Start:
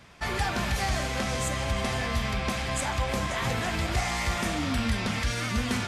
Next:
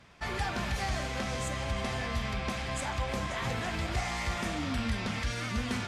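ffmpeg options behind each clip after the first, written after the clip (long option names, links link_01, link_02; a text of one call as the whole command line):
ffmpeg -i in.wav -af "highshelf=frequency=11000:gain=-10.5,volume=-4.5dB" out.wav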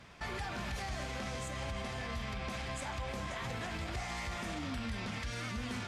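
ffmpeg -i in.wav -af "alimiter=level_in=9dB:limit=-24dB:level=0:latency=1:release=134,volume=-9dB,volume=2dB" out.wav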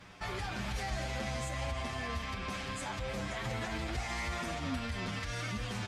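ffmpeg -i in.wav -filter_complex "[0:a]asplit=2[link_01][link_02];[link_02]adelay=7.9,afreqshift=0.38[link_03];[link_01][link_03]amix=inputs=2:normalize=1,volume=5dB" out.wav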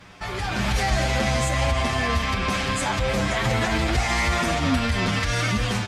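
ffmpeg -i in.wav -af "dynaudnorm=framelen=320:gausssize=3:maxgain=8dB,volume=6.5dB" out.wav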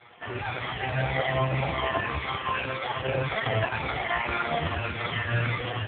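ffmpeg -i in.wav -af "afftfilt=real='re*pow(10,9/40*sin(2*PI*(1.4*log(max(b,1)*sr/1024/100)/log(2)-(-1.8)*(pts-256)/sr)))':imag='im*pow(10,9/40*sin(2*PI*(1.4*log(max(b,1)*sr/1024/100)/log(2)-(-1.8)*(pts-256)/sr)))':win_size=1024:overlap=0.75,afftfilt=real='re*(1-between(b*sr/4096,170,350))':imag='im*(1-between(b*sr/4096,170,350))':win_size=4096:overlap=0.75" -ar 8000 -c:a libopencore_amrnb -b:a 4750 out.amr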